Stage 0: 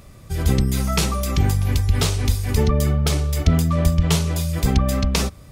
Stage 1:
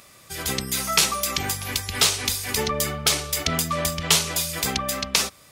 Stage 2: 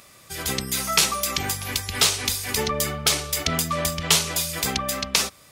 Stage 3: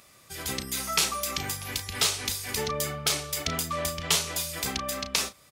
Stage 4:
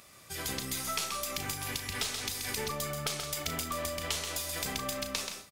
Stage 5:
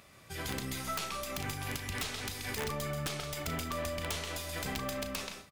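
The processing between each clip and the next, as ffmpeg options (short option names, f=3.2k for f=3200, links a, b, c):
-af "highpass=f=380:p=1,tiltshelf=f=920:g=-5.5,dynaudnorm=f=380:g=3:m=3dB"
-af anull
-filter_complex "[0:a]asplit=2[a][b];[b]adelay=34,volume=-10.5dB[c];[a][c]amix=inputs=2:normalize=0,volume=-6dB"
-af "acompressor=threshold=-33dB:ratio=4,aeval=exprs='0.15*(cos(1*acos(clip(val(0)/0.15,-1,1)))-cos(1*PI/2))+0.00596*(cos(6*acos(clip(val(0)/0.15,-1,1)))-cos(6*PI/2))':c=same,aecho=1:1:131|168:0.473|0.211"
-af "bass=f=250:g=3,treble=f=4k:g=-8,bandreject=f=1.2k:w=27,aeval=exprs='(mod(17.8*val(0)+1,2)-1)/17.8':c=same"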